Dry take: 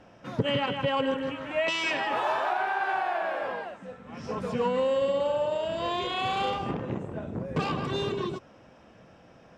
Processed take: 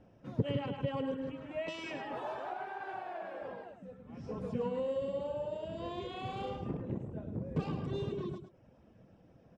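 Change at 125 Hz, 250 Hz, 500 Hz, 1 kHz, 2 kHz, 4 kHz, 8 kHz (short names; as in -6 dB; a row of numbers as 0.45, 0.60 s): -3.0 dB, -5.5 dB, -9.0 dB, -13.5 dB, -16.0 dB, -16.0 dB, n/a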